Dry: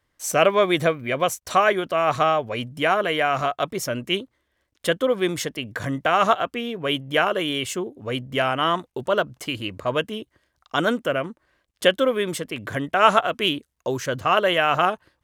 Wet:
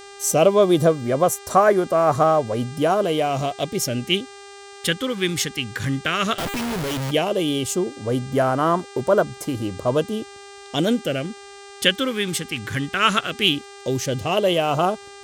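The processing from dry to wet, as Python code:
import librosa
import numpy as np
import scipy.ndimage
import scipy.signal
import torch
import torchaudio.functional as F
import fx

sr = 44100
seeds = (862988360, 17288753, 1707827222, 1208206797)

y = fx.phaser_stages(x, sr, stages=2, low_hz=660.0, high_hz=2700.0, hz=0.14, feedback_pct=25)
y = fx.dmg_buzz(y, sr, base_hz=400.0, harmonics=23, level_db=-47.0, tilt_db=-4, odd_only=False)
y = fx.schmitt(y, sr, flips_db=-43.0, at=(6.38, 7.11))
y = F.gain(torch.from_numpy(y), 5.5).numpy()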